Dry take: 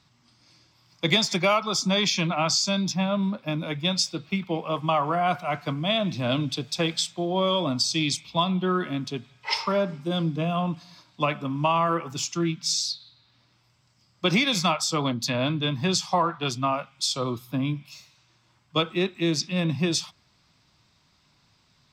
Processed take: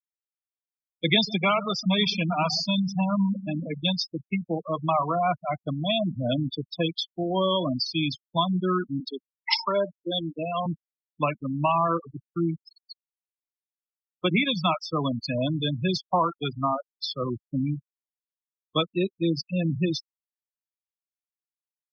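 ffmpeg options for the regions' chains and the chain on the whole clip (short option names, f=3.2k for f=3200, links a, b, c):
-filter_complex "[0:a]asettb=1/sr,asplit=3[a][b][c];[a]atrim=end=1.144[d];[b]atrim=start=1.14:end=3.97,asetpts=PTS-STARTPTS,afade=t=in:d=0.004:c=qsin,afade=t=out:st=2.826:d=0.004:c=qsin,aecho=1:1:4.2:0.46,atrim=end_sample=124803,asplit=2[e][f];[f]adelay=135,lowpass=f=1.7k:p=1,volume=-12.5dB,asplit=2[g][h];[h]adelay=135,lowpass=f=1.7k:p=1,volume=0.55,asplit=2[i][j];[j]adelay=135,lowpass=f=1.7k:p=1,volume=0.55,asplit=2[k][l];[l]adelay=135,lowpass=f=1.7k:p=1,volume=0.55,asplit=2[m][n];[n]adelay=135,lowpass=f=1.7k:p=1,volume=0.55,asplit=2[o][p];[p]adelay=135,lowpass=f=1.7k:p=1,volume=0.55[q];[e][g][i][k][m][o][q]amix=inputs=7:normalize=0,atrim=end_sample=124803[r];[c]atrim=start=3.966[s];[d][r]acrossfade=d=0.004:c1=hsin:c2=qsin[t];[t][s]acrossfade=d=0.004:c1=qsin:c2=hsin,asettb=1/sr,asplit=3[u][v][w];[u]atrim=end=9.004[x];[v]atrim=start=9:end=10.66,asetpts=PTS-STARTPTS,afade=t=in:d=0.004:c=qsin,afade=t=out:st=1.656:d=0.004:c=qsin,highpass=270,highshelf=f=3.7k:g=11.5[y];[w]atrim=start=10.656[z];[x][y]acrossfade=d=0.004:c1=hsin:c2=qsin[aa];[aa][z]acrossfade=d=0.004:c1=qsin:c2=hsin,asettb=1/sr,asplit=3[ab][ac][ad];[ab]atrim=end=11.984[ae];[ac]atrim=start=11.98:end=14.49,asetpts=PTS-STARTPTS,afade=t=in:d=0.004:c=qsin,afade=t=out:st=2.506:d=0.004:c=qsin,bandreject=f=50:t=h:w=6,bandreject=f=100:t=h:w=6,bandreject=f=150:t=h:w=6,bandreject=f=200:t=h:w=6,acrossover=split=3900[af][ag];[ag]acompressor=threshold=-41dB:ratio=4:attack=1:release=60[ah];[af][ah]amix=inputs=2:normalize=0,aeval=exprs='val(0)*gte(abs(val(0)),0.00668)':c=same[ai];[ad]atrim=start=14.486[aj];[ae][ai]acrossfade=d=0.004:c1=hsin:c2=qsin[ak];[ak][aj]acrossfade=d=0.004:c1=qsin:c2=hsin,afftfilt=real='re*gte(hypot(re,im),0.112)':imag='im*gte(hypot(re,im),0.112)':win_size=1024:overlap=0.75,lowpass=f=4.8k:w=0.5412,lowpass=f=4.8k:w=1.3066,afftfilt=real='re*gte(hypot(re,im),0.00891)':imag='im*gte(hypot(re,im),0.00891)':win_size=1024:overlap=0.75"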